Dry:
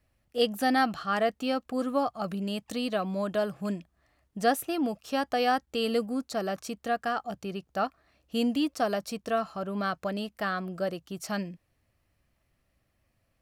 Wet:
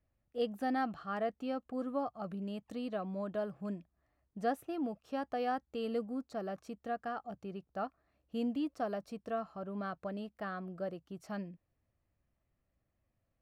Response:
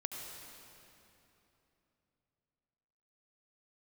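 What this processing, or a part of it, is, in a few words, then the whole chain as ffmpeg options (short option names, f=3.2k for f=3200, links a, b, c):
through cloth: -af "highshelf=f=2.4k:g=-14.5,volume=-7.5dB"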